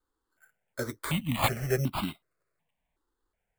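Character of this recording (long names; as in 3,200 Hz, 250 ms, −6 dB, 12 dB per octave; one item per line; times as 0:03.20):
aliases and images of a low sample rate 5,800 Hz, jitter 0%
notches that jump at a steady rate 2.7 Hz 640–1,800 Hz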